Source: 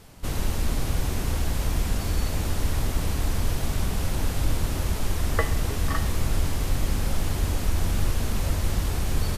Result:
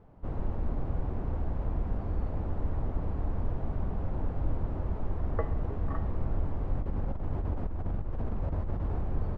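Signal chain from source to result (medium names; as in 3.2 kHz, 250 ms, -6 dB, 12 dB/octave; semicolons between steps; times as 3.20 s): Chebyshev low-pass 830 Hz, order 2; 6.77–9.01 s: compressor with a negative ratio -25 dBFS, ratio -1; trim -5 dB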